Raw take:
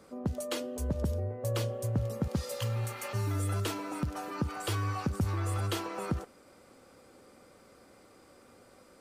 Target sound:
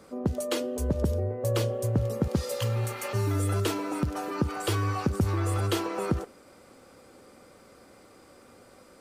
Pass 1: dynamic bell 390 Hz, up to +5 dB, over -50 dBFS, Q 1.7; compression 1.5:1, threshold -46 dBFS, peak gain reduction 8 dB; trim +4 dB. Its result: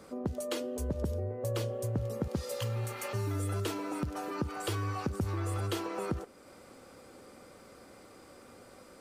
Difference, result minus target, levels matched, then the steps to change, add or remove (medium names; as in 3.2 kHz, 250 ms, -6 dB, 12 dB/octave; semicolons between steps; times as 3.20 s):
compression: peak gain reduction +8 dB
remove: compression 1.5:1, threshold -46 dBFS, peak gain reduction 8 dB